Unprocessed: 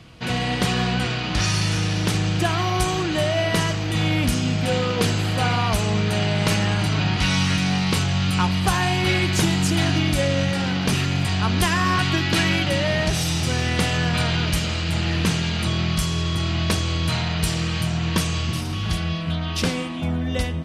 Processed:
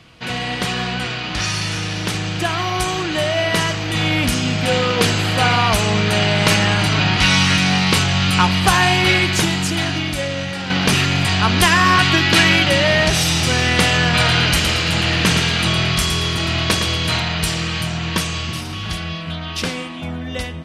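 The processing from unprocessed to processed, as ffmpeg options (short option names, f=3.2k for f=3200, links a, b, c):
-filter_complex "[0:a]asettb=1/sr,asplit=3[a][b][c];[a]atrim=end=14.084[d];[b]atrim=start=14.08:end=17.2,asetpts=PTS-STARTPTS,afade=t=in:d=0.004:c=qsin,afade=t=out:st=3.116:d=0.004:c=qsin,aecho=1:1:113|226|339|452:0.473|0.151|0.0485|0.0155,atrim=end_sample=137592[e];[c]atrim=start=17.196[f];[d][e]acrossfade=d=0.004:c1=hsin:c2=qsin[g];[g][f]acrossfade=d=0.004:c1=qsin:c2=hsin,asplit=2[h][i];[h]atrim=end=10.7,asetpts=PTS-STARTPTS,afade=t=out:st=8.92:d=1.78:c=qua:silence=0.375837[j];[i]atrim=start=10.7,asetpts=PTS-STARTPTS,afade=t=in:d=0.004:c=hsin:silence=0.375837[k];[j][k]concat=n=2:v=0:a=1,lowshelf=f=250:g=-4.5,dynaudnorm=f=610:g=13:m=8dB,equalizer=f=2.2k:t=o:w=2.3:g=3"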